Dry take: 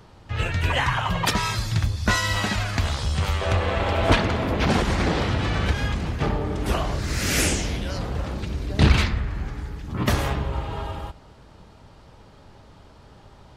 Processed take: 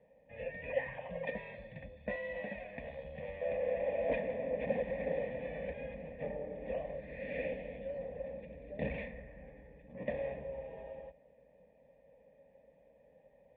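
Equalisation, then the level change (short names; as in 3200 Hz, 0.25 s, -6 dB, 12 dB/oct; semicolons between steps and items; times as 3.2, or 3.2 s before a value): vocal tract filter e; HPF 52 Hz; fixed phaser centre 360 Hz, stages 6; +1.0 dB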